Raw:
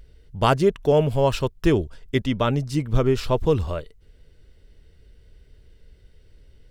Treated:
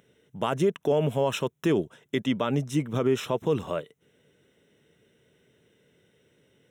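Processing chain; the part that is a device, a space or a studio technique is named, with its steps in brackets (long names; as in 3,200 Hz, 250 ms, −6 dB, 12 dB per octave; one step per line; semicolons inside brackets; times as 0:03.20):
PA system with an anti-feedback notch (high-pass filter 150 Hz 24 dB per octave; Butterworth band-reject 4,600 Hz, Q 3; brickwall limiter −14.5 dBFS, peak gain reduction 11 dB)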